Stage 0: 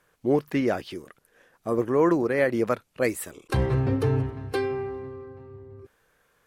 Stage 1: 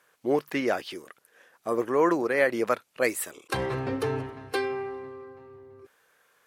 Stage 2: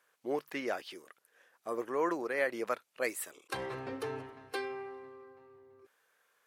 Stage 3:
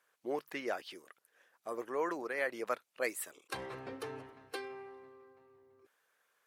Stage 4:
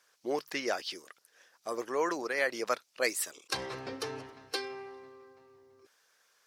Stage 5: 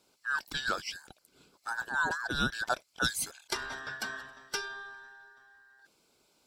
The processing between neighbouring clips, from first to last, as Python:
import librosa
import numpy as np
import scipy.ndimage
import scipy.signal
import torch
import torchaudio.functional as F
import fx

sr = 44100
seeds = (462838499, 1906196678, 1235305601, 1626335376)

y1 = fx.highpass(x, sr, hz=620.0, slope=6)
y1 = y1 * 10.0 ** (3.0 / 20.0)
y2 = fx.low_shelf(y1, sr, hz=200.0, db=-11.0)
y2 = y2 * 10.0 ** (-7.5 / 20.0)
y3 = fx.hpss(y2, sr, part='harmonic', gain_db=-5)
y3 = y3 * 10.0 ** (-1.0 / 20.0)
y4 = fx.peak_eq(y3, sr, hz=5300.0, db=13.0, octaves=1.0)
y4 = y4 * 10.0 ** (4.0 / 20.0)
y5 = fx.band_invert(y4, sr, width_hz=2000)